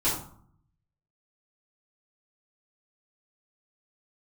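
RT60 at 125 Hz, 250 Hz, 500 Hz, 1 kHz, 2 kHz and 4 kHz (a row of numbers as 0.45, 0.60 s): 1.1, 0.80, 0.55, 0.60, 0.40, 0.30 s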